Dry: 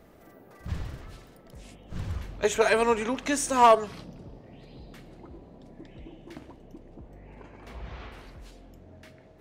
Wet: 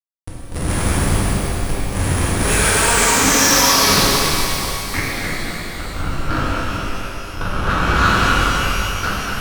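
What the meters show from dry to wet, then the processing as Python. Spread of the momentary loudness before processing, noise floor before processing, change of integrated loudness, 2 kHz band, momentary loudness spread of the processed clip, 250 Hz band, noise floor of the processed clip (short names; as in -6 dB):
23 LU, -54 dBFS, +8.5 dB, +17.0 dB, 15 LU, +14.0 dB, -30 dBFS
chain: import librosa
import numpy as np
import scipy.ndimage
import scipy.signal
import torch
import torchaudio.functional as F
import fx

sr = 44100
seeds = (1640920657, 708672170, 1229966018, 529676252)

p1 = fx.band_shelf(x, sr, hz=1600.0, db=14.5, octaves=1.7)
p2 = fx.over_compress(p1, sr, threshold_db=-24.0, ratio=-0.5)
p3 = p1 + F.gain(torch.from_numpy(p2), 2.5).numpy()
p4 = fx.schmitt(p3, sr, flips_db=-23.0)
p5 = fx.filter_sweep_lowpass(p4, sr, from_hz=9900.0, to_hz=1400.0, start_s=2.57, end_s=5.69, q=7.4)
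p6 = np.clip(10.0 ** (14.5 / 20.0) * p5, -1.0, 1.0) / 10.0 ** (14.5 / 20.0)
p7 = p6 + fx.echo_split(p6, sr, split_hz=350.0, low_ms=91, high_ms=246, feedback_pct=52, wet_db=-8, dry=0)
p8 = fx.rev_shimmer(p7, sr, seeds[0], rt60_s=2.9, semitones=12, shimmer_db=-8, drr_db=-8.0)
y = F.gain(torch.from_numpy(p8), -5.5).numpy()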